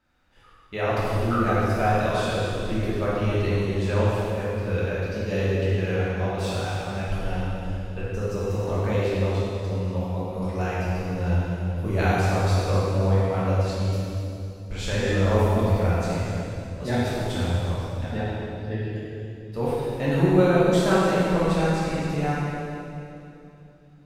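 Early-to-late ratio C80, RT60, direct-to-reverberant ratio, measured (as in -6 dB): -2.0 dB, 2.8 s, -9.5 dB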